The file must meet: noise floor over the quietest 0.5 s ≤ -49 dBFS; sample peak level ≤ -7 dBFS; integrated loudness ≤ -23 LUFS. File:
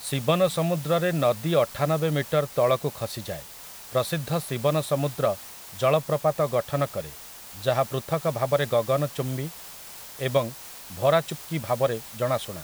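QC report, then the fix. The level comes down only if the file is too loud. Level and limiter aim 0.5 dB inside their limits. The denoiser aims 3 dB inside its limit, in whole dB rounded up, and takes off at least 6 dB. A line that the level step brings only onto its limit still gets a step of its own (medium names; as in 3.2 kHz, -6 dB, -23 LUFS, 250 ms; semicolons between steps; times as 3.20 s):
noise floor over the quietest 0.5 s -43 dBFS: fail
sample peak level -8.0 dBFS: pass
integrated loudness -26.0 LUFS: pass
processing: noise reduction 9 dB, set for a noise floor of -43 dBFS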